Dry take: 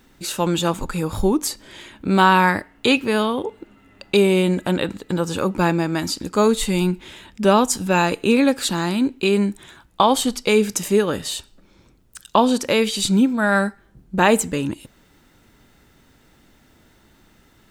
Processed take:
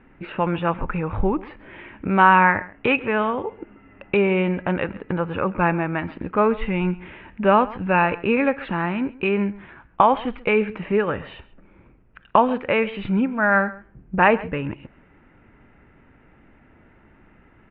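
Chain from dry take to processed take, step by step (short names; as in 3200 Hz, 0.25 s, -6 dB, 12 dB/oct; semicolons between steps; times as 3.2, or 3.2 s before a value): steep low-pass 2600 Hz 48 dB/oct; dynamic EQ 280 Hz, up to -8 dB, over -31 dBFS, Q 0.89; outdoor echo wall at 23 m, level -19 dB; gain +2 dB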